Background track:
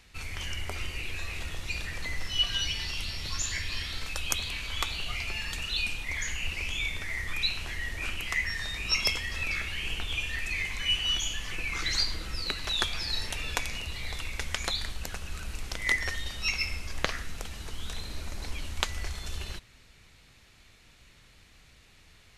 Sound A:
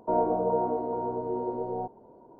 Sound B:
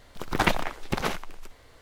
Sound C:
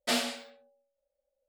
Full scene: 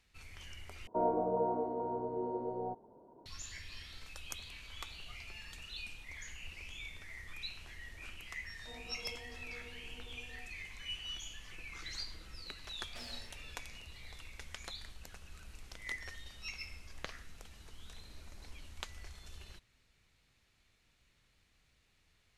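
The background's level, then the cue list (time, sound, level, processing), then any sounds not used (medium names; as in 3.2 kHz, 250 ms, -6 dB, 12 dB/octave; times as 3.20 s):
background track -15 dB
0.87 s: replace with A -6.5 dB
8.58 s: add A -15.5 dB + inharmonic resonator 240 Hz, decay 0.23 s, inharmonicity 0.002
12.88 s: add C -17.5 dB + compression, threshold -29 dBFS
not used: B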